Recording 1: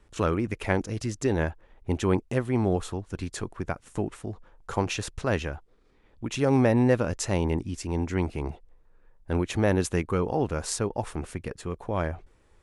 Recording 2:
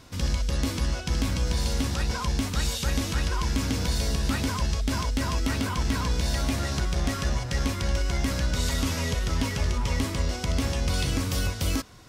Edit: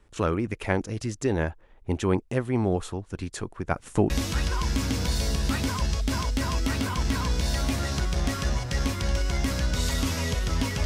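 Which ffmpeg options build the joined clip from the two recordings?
-filter_complex "[0:a]asplit=3[s0][s1][s2];[s0]afade=t=out:st=3.7:d=0.02[s3];[s1]acontrast=90,afade=t=in:st=3.7:d=0.02,afade=t=out:st=4.1:d=0.02[s4];[s2]afade=t=in:st=4.1:d=0.02[s5];[s3][s4][s5]amix=inputs=3:normalize=0,apad=whole_dur=10.85,atrim=end=10.85,atrim=end=4.102[s6];[1:a]atrim=start=2.898:end=9.65[s7];[s6][s7]acrossfade=d=0.004:c1=hsin:c2=hsin"

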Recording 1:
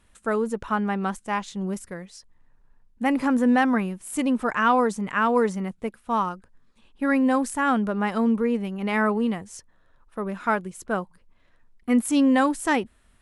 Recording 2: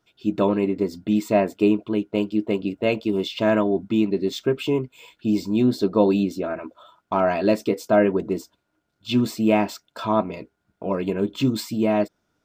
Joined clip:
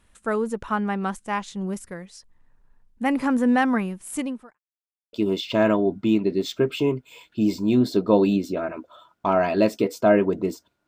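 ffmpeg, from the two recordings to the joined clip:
-filter_complex "[0:a]apad=whole_dur=10.87,atrim=end=10.87,asplit=2[s0][s1];[s0]atrim=end=4.59,asetpts=PTS-STARTPTS,afade=t=out:st=4.15:d=0.44:c=qua[s2];[s1]atrim=start=4.59:end=5.13,asetpts=PTS-STARTPTS,volume=0[s3];[1:a]atrim=start=3:end=8.74,asetpts=PTS-STARTPTS,afade=t=in:d=0.004:c=hsin[s4];[s2][s3][s4]concat=n=3:v=0:a=1"

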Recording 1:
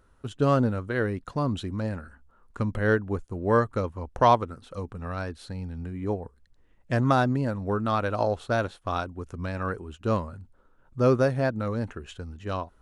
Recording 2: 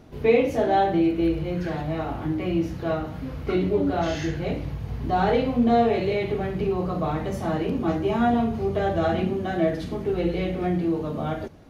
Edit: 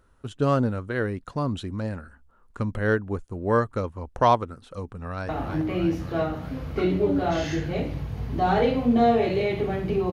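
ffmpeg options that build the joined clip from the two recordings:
-filter_complex "[0:a]apad=whole_dur=10.12,atrim=end=10.12,atrim=end=5.292[s0];[1:a]atrim=start=1.998:end=6.83[s1];[s0][s1]acrossfade=d=0.004:c1=hsin:c2=hsin,asplit=2[s2][s3];[s3]afade=t=in:st=4.92:d=0.01,afade=t=out:st=5.29:d=0.01,aecho=0:1:320|640|960|1280|1600|1920|2240|2560|2880|3200|3520|3840:0.530884|0.371619|0.260133|0.182093|0.127465|0.0892257|0.062458|0.0437206|0.0306044|0.0214231|0.0149962|0.0104973[s4];[s2][s4]amix=inputs=2:normalize=0"

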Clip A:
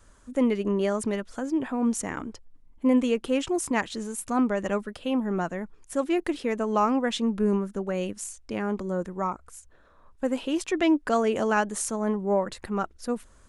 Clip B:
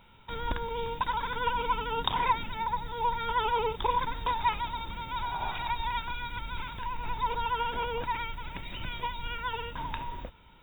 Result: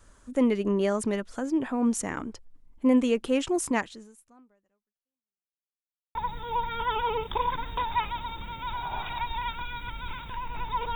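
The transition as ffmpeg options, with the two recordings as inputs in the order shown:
-filter_complex "[0:a]apad=whole_dur=10.95,atrim=end=10.95,asplit=2[s0][s1];[s0]atrim=end=5.7,asetpts=PTS-STARTPTS,afade=t=out:st=3.75:d=1.95:c=exp[s2];[s1]atrim=start=5.7:end=6.15,asetpts=PTS-STARTPTS,volume=0[s3];[1:a]atrim=start=2.64:end=7.44,asetpts=PTS-STARTPTS,afade=t=in:d=0.004:c=hsin[s4];[s2][s3][s4]concat=n=3:v=0:a=1"

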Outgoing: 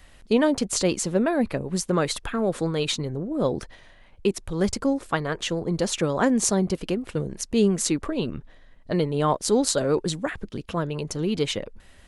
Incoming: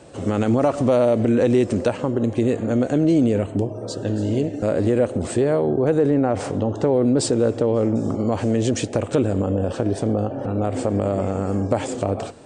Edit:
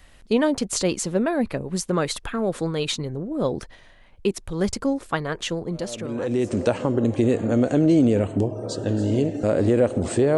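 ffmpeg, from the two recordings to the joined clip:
-filter_complex "[0:a]apad=whole_dur=10.37,atrim=end=10.37,atrim=end=6.71,asetpts=PTS-STARTPTS[s0];[1:a]atrim=start=0.72:end=5.56,asetpts=PTS-STARTPTS[s1];[s0][s1]acrossfade=d=1.18:c1=qua:c2=qua"

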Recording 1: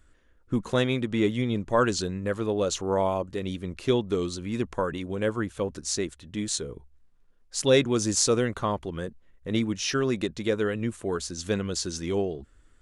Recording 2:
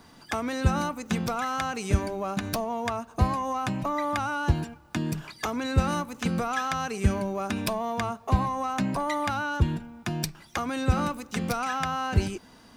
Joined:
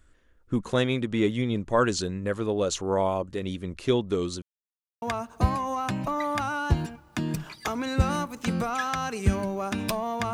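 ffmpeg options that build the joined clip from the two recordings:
-filter_complex "[0:a]apad=whole_dur=10.33,atrim=end=10.33,asplit=2[s0][s1];[s0]atrim=end=4.42,asetpts=PTS-STARTPTS,afade=t=out:st=4.416:d=0.004:c=hsin[s2];[s1]atrim=start=4.42:end=5.02,asetpts=PTS-STARTPTS,volume=0[s3];[1:a]atrim=start=2.8:end=8.11,asetpts=PTS-STARTPTS,afade=t=in:d=0.004:c=hsin[s4];[s2][s3][s4]concat=n=3:v=0:a=1"

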